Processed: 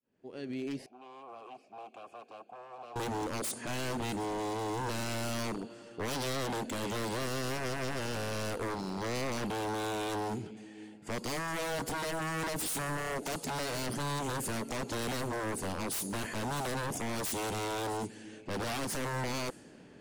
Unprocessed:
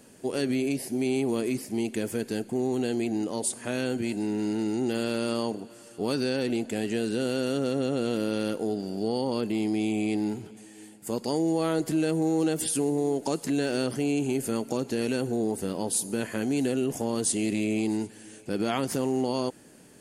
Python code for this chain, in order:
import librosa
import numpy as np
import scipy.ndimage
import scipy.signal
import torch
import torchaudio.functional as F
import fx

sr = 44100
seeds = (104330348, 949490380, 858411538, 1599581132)

y = fx.fade_in_head(x, sr, length_s=1.95)
y = fx.env_lowpass(y, sr, base_hz=2900.0, full_db=-24.0)
y = 10.0 ** (-30.0 / 20.0) * (np.abs((y / 10.0 ** (-30.0 / 20.0) + 3.0) % 4.0 - 2.0) - 1.0)
y = fx.vowel_filter(y, sr, vowel='a', at=(0.86, 2.96))